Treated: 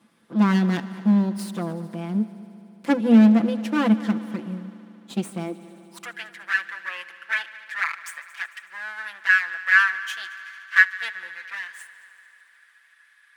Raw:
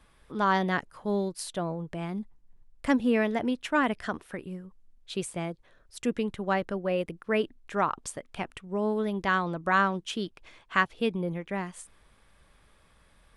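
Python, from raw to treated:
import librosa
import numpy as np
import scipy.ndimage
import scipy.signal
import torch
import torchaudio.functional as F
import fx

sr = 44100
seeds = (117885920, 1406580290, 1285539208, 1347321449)

y = fx.lower_of_two(x, sr, delay_ms=5.9)
y = fx.filter_sweep_highpass(y, sr, from_hz=220.0, to_hz=1700.0, start_s=5.42, end_s=6.16, q=7.8)
y = fx.echo_heads(y, sr, ms=74, heads='all three', feedback_pct=71, wet_db=-22.5)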